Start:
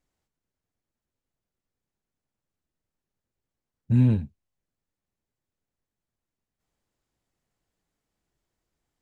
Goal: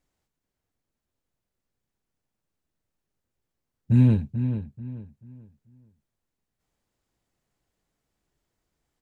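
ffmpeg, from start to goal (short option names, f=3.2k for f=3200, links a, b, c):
-filter_complex "[0:a]asplit=2[a][b];[b]adelay=437,lowpass=f=2.8k:p=1,volume=-9dB,asplit=2[c][d];[d]adelay=437,lowpass=f=2.8k:p=1,volume=0.31,asplit=2[e][f];[f]adelay=437,lowpass=f=2.8k:p=1,volume=0.31,asplit=2[g][h];[h]adelay=437,lowpass=f=2.8k:p=1,volume=0.31[i];[a][c][e][g][i]amix=inputs=5:normalize=0,volume=2dB"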